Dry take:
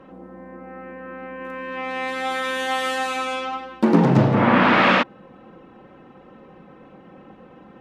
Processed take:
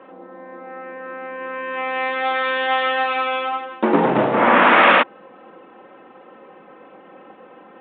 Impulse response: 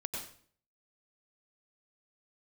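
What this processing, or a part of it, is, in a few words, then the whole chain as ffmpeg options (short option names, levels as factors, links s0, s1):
telephone: -af "highpass=390,lowpass=3500,volume=1.78" -ar 8000 -c:a pcm_mulaw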